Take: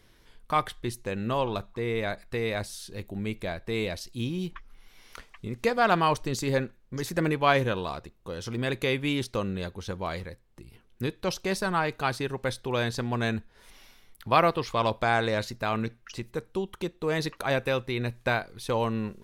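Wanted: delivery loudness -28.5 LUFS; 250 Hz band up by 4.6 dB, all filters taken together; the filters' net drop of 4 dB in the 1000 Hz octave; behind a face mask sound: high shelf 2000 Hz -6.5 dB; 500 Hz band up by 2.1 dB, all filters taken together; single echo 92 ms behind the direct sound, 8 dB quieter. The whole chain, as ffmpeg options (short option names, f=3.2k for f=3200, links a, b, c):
-af "equalizer=f=250:t=o:g=5.5,equalizer=f=500:t=o:g=3,equalizer=f=1k:t=o:g=-5.5,highshelf=f=2k:g=-6.5,aecho=1:1:92:0.398,volume=-1dB"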